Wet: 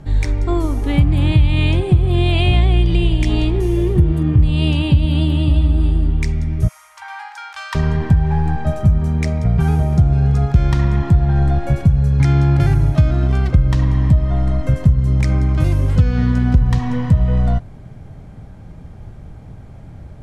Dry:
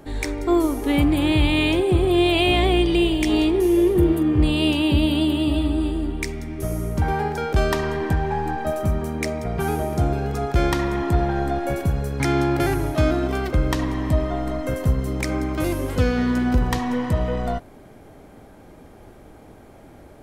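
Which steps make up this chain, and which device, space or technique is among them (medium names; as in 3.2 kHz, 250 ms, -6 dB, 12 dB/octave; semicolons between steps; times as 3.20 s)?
6.68–7.75 s: elliptic high-pass 900 Hz, stop band 60 dB; jukebox (low-pass 7.9 kHz 12 dB/octave; resonant low shelf 210 Hz +13 dB, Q 1.5; compression 4:1, threshold -9 dBFS, peak gain reduction 8.5 dB)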